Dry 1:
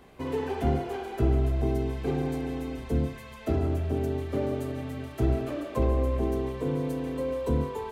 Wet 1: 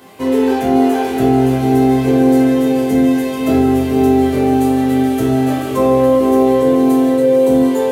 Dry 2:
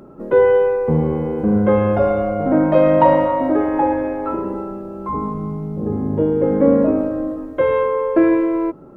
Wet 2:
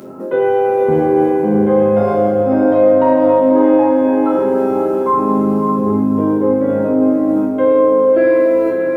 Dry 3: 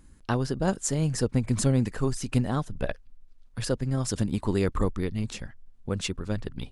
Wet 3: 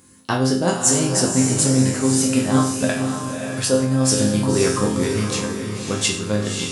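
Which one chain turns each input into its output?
high-shelf EQ 4,800 Hz +10 dB
resonators tuned to a chord F2 minor, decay 0.53 s
reversed playback
downward compressor 6 to 1, threshold −36 dBFS
reversed playback
high-pass filter 140 Hz 12 dB per octave
feedback delay with all-pass diffusion 551 ms, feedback 44%, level −5 dB
normalise the peak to −1.5 dBFS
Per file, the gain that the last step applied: +27.5, +25.0, +24.0 decibels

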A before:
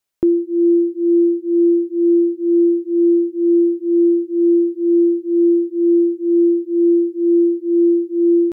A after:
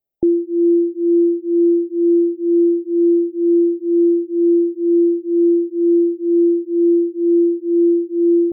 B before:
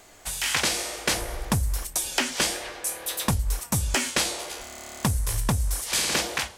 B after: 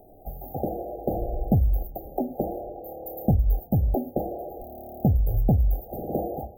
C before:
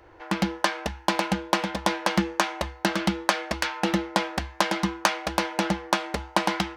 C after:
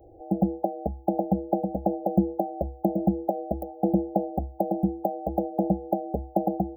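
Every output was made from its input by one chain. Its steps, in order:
linear-phase brick-wall band-stop 830–14,000 Hz
normalise the peak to −9 dBFS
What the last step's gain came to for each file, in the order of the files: −0.5, +5.0, +2.5 decibels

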